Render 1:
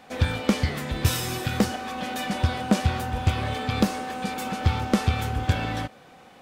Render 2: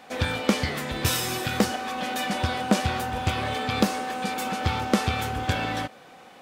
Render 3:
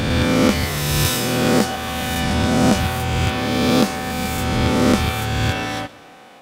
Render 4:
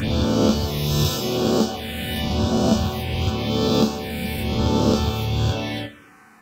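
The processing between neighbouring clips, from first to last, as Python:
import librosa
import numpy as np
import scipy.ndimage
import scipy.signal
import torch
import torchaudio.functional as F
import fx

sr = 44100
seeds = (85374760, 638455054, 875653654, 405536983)

y1 = fx.low_shelf(x, sr, hz=150.0, db=-11.0)
y1 = y1 * librosa.db_to_amplitude(2.5)
y2 = fx.spec_swells(y1, sr, rise_s=2.27)
y2 = fx.echo_feedback(y2, sr, ms=123, feedback_pct=54, wet_db=-21.0)
y2 = y2 * librosa.db_to_amplitude(1.5)
y3 = fx.resonator_bank(y2, sr, root=38, chord='major', decay_s=0.24)
y3 = fx.env_phaser(y3, sr, low_hz=540.0, high_hz=2000.0, full_db=-25.0)
y3 = y3 * librosa.db_to_amplitude(8.0)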